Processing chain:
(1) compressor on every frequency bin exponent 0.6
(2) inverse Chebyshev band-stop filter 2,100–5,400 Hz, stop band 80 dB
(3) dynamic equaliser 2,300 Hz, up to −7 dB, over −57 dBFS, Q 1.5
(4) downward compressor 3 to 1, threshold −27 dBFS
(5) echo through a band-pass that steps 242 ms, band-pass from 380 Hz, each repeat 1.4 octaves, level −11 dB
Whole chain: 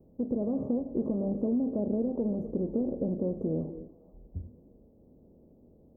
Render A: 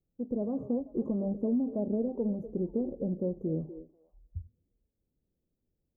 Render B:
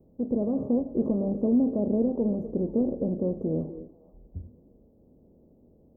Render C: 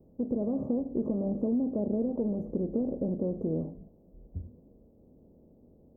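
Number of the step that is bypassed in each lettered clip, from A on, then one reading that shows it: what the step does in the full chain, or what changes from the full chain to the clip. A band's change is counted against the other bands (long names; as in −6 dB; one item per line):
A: 1, change in integrated loudness −1.5 LU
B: 4, average gain reduction 2.0 dB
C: 5, echo-to-direct ratio −15.5 dB to none audible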